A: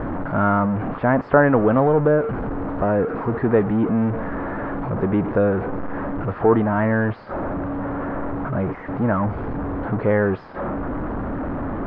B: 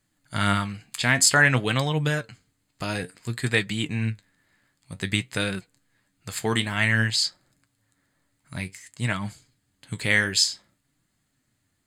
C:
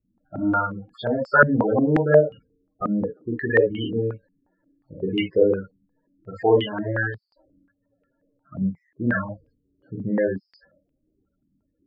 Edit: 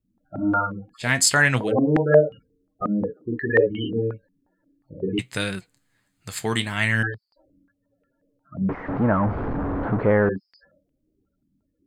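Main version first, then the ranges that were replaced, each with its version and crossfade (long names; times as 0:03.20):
C
0:01.04–0:01.65: punch in from B, crossfade 0.16 s
0:05.19–0:07.03: punch in from B
0:08.69–0:10.29: punch in from A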